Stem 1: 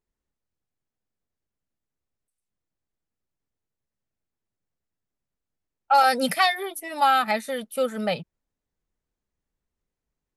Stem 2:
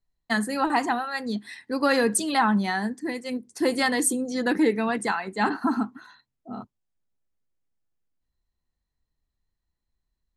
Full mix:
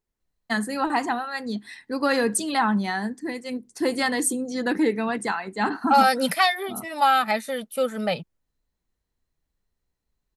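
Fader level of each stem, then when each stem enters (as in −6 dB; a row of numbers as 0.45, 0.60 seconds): +0.5, −0.5 decibels; 0.00, 0.20 seconds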